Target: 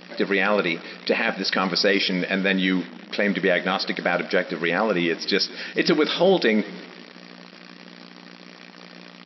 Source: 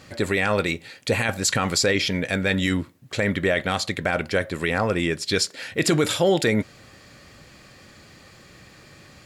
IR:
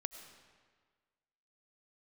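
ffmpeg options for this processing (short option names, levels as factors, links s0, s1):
-filter_complex "[0:a]asplit=2[s0][s1];[1:a]atrim=start_sample=2205[s2];[s1][s2]afir=irnorm=-1:irlink=0,volume=0.237[s3];[s0][s3]amix=inputs=2:normalize=0,aeval=exprs='val(0)+0.01*(sin(2*PI*60*n/s)+sin(2*PI*2*60*n/s)/2+sin(2*PI*3*60*n/s)/3+sin(2*PI*4*60*n/s)/4+sin(2*PI*5*60*n/s)/5)':c=same,asplit=5[s4][s5][s6][s7][s8];[s5]adelay=172,afreqshift=-34,volume=0.0891[s9];[s6]adelay=344,afreqshift=-68,volume=0.0501[s10];[s7]adelay=516,afreqshift=-102,volume=0.0279[s11];[s8]adelay=688,afreqshift=-136,volume=0.0157[s12];[s4][s9][s10][s11][s12]amix=inputs=5:normalize=0,acrusher=bits=7:dc=4:mix=0:aa=0.000001,afftfilt=real='re*between(b*sr/4096,170,5700)':imag='im*between(b*sr/4096,170,5700)':win_size=4096:overlap=0.75"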